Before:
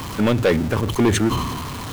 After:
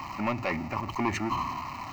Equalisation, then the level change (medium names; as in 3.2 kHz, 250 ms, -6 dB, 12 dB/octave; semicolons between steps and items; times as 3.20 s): tone controls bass -14 dB, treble -14 dB; static phaser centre 2.3 kHz, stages 8; -1.5 dB